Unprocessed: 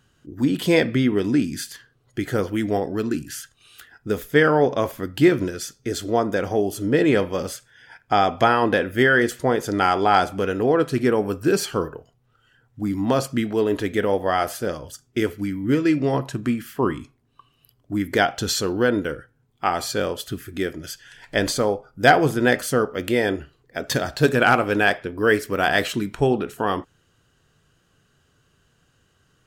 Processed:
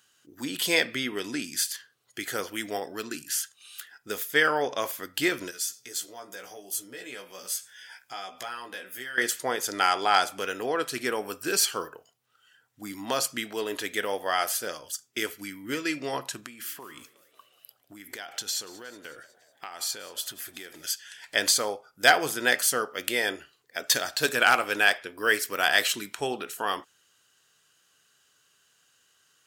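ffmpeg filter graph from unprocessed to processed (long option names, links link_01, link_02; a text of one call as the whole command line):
ffmpeg -i in.wav -filter_complex "[0:a]asettb=1/sr,asplit=3[link_01][link_02][link_03];[link_01]atrim=end=5.514[link_04];[link_02]atrim=start=5.51:end=9.18,asetpts=PTS-STARTPTS,afade=type=in:duration=0.004:curve=qsin,afade=type=out:start_time=3.666:duration=0.004:curve=qsin,acompressor=threshold=-45dB:ratio=2:attack=3.2:release=140:knee=1:detection=peak,highshelf=frequency=5500:gain=8,asplit=2[link_05][link_06];[link_06]adelay=16,volume=-4dB[link_07];[link_05][link_07]amix=inputs=2:normalize=0,atrim=end_sample=161847[link_08];[link_03]atrim=start=9.176[link_09];[link_04][link_08]acrossfade=duration=0.004:curve1=hsin:curve2=qsin[link_10];[link_10][link_09]acrossfade=duration=0.004:curve1=qsin:curve2=hsin,asettb=1/sr,asplit=3[link_11][link_12][link_13];[link_11]atrim=end=16.404[link_14];[link_12]atrim=start=16.4:end=20.89,asetpts=PTS-STARTPTS,afade=type=in:duration=0.004:curve=qsin,afade=type=out:start_time=4.486:duration=0.004:curve=qsin,acompressor=threshold=-30dB:ratio=12:attack=3.2:release=140:knee=1:detection=peak,asplit=6[link_15][link_16][link_17][link_18][link_19][link_20];[link_16]adelay=183,afreqshift=78,volume=-20dB[link_21];[link_17]adelay=366,afreqshift=156,volume=-24.2dB[link_22];[link_18]adelay=549,afreqshift=234,volume=-28.3dB[link_23];[link_19]adelay=732,afreqshift=312,volume=-32.5dB[link_24];[link_20]adelay=915,afreqshift=390,volume=-36.6dB[link_25];[link_15][link_21][link_22][link_23][link_24][link_25]amix=inputs=6:normalize=0,atrim=end_sample=198009[link_26];[link_13]atrim=start=20.886[link_27];[link_14][link_26]acrossfade=duration=0.004:curve1=hsin:curve2=qsin[link_28];[link_28][link_27]acrossfade=duration=0.004:curve1=qsin:curve2=hsin,highpass=frequency=1300:poles=1,highshelf=frequency=3600:gain=8.5,volume=-1dB" out.wav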